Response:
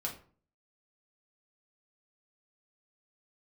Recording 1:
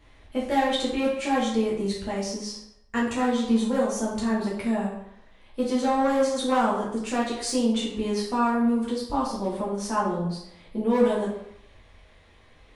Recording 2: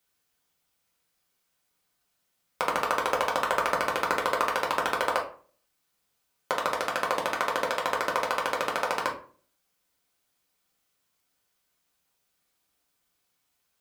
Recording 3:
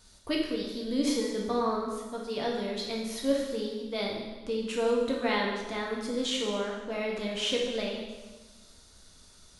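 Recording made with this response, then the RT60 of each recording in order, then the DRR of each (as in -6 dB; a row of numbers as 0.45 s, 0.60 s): 2; 0.75 s, 0.45 s, 1.2 s; -6.5 dB, -2.0 dB, -2.0 dB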